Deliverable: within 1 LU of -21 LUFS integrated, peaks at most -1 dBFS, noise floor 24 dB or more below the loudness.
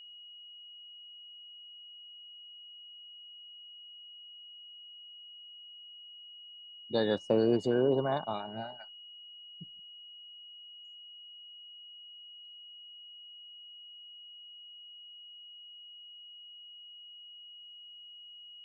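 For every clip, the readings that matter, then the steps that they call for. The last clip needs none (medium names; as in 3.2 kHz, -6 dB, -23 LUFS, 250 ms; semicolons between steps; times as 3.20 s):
steady tone 2.9 kHz; tone level -48 dBFS; loudness -39.5 LUFS; peak level -14.5 dBFS; loudness target -21.0 LUFS
-> band-stop 2.9 kHz, Q 30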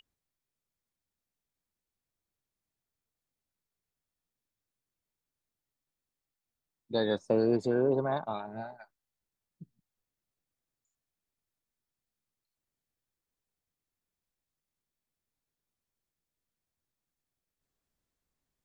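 steady tone not found; loudness -30.0 LUFS; peak level -14.5 dBFS; loudness target -21.0 LUFS
-> trim +9 dB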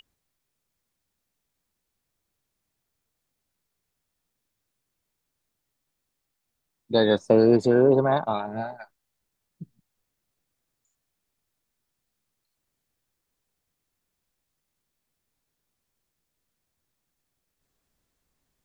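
loudness -21.0 LUFS; peak level -5.5 dBFS; noise floor -81 dBFS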